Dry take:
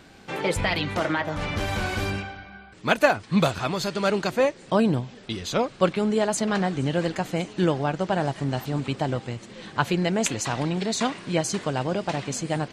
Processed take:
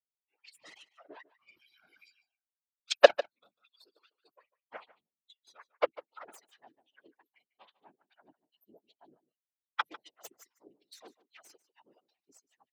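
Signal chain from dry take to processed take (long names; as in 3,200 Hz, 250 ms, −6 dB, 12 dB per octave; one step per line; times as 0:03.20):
spectral dynamics exaggerated over time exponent 3
noise gate −47 dBFS, range −9 dB
0:03.20–0:04.62: downward compressor 6 to 1, threshold −39 dBFS, peak gain reduction 19 dB
0:10.29–0:10.74: gain on a spectral selection 2,200–4,400 Hz −13 dB
harmonic generator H 3 −10 dB, 4 −28 dB, 7 −37 dB, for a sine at −7 dBFS
random phases in short frames
auto-filter high-pass sine 2.5 Hz 330–4,000 Hz
on a send: single-tap delay 148 ms −18.5 dB
on the sum: boost into a limiter +7.5 dB
level −1 dB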